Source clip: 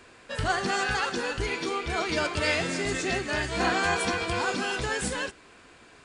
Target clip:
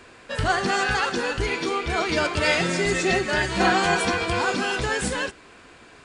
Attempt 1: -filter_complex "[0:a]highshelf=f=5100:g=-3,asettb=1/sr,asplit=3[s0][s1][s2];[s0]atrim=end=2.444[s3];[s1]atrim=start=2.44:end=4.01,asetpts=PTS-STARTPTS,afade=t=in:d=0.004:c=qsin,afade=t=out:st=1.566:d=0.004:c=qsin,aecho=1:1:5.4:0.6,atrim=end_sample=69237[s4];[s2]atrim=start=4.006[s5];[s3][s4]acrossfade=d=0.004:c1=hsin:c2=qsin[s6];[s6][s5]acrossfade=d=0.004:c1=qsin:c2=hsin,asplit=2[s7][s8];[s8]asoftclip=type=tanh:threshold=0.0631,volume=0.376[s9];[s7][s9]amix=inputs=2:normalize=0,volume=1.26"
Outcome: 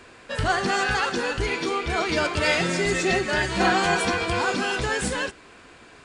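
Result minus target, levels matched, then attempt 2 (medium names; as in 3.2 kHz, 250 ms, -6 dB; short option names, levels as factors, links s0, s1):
saturation: distortion +12 dB
-filter_complex "[0:a]highshelf=f=5100:g=-3,asettb=1/sr,asplit=3[s0][s1][s2];[s0]atrim=end=2.444[s3];[s1]atrim=start=2.44:end=4.01,asetpts=PTS-STARTPTS,afade=t=in:d=0.004:c=qsin,afade=t=out:st=1.566:d=0.004:c=qsin,aecho=1:1:5.4:0.6,atrim=end_sample=69237[s4];[s2]atrim=start=4.006[s5];[s3][s4]acrossfade=d=0.004:c1=hsin:c2=qsin[s6];[s6][s5]acrossfade=d=0.004:c1=qsin:c2=hsin,asplit=2[s7][s8];[s8]asoftclip=type=tanh:threshold=0.178,volume=0.376[s9];[s7][s9]amix=inputs=2:normalize=0,volume=1.26"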